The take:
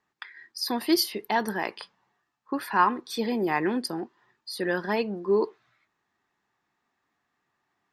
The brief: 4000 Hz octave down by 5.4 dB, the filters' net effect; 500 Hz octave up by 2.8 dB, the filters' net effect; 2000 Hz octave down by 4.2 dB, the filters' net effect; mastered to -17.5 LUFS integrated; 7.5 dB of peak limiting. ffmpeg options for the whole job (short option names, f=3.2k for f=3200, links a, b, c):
-af "equalizer=f=500:t=o:g=4,equalizer=f=2k:t=o:g=-4.5,equalizer=f=4k:t=o:g=-6,volume=12dB,alimiter=limit=-5.5dB:level=0:latency=1"